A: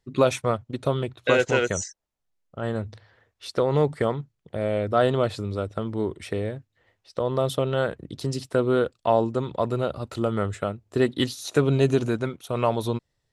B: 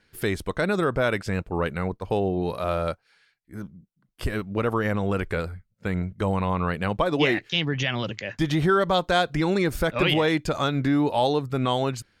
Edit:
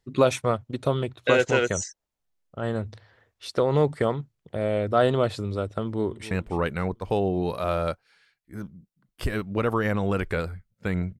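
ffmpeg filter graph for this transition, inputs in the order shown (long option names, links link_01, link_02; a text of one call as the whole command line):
ffmpeg -i cue0.wav -i cue1.wav -filter_complex "[0:a]apad=whole_dur=11.19,atrim=end=11.19,atrim=end=6.312[link_01];[1:a]atrim=start=1.308:end=6.19[link_02];[link_01][link_02]acrossfade=duration=0.004:curve1=hsin:curve2=hsin,asplit=2[link_03][link_04];[link_04]afade=type=in:start_time=5.84:duration=0.01,afade=type=out:start_time=6.31:duration=0.01,aecho=0:1:280|560|840|1120|1400:0.16788|0.0839402|0.0419701|0.0209851|0.0104925[link_05];[link_03][link_05]amix=inputs=2:normalize=0" out.wav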